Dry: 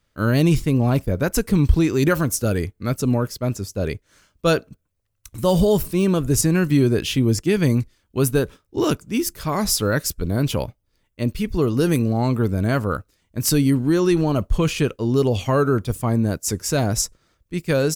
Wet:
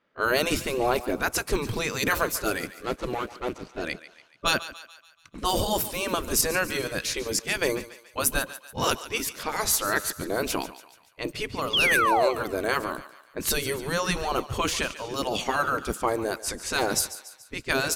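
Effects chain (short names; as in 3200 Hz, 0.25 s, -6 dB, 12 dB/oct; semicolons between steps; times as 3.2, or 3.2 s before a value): 2.67–3.82 median filter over 25 samples; low-pass opened by the level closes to 2200 Hz, open at -16.5 dBFS; spectral gate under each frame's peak -10 dB weak; 6.69–7.68 transient shaper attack -1 dB, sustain -7 dB; 11.73–12.29 painted sound fall 520–3500 Hz -25 dBFS; on a send: thinning echo 0.143 s, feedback 52%, high-pass 600 Hz, level -14 dB; on the sum: gain +3 dB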